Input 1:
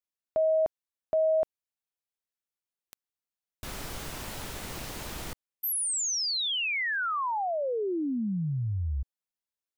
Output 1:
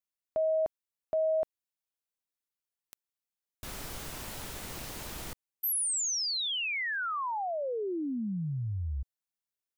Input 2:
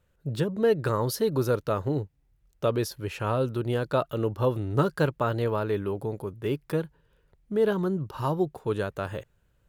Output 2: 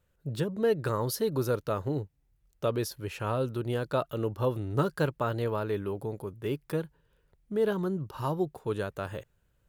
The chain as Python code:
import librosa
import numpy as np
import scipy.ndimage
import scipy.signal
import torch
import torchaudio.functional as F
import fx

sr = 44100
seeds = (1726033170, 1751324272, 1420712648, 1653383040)

y = fx.high_shelf(x, sr, hz=6900.0, db=4.0)
y = y * librosa.db_to_amplitude(-3.5)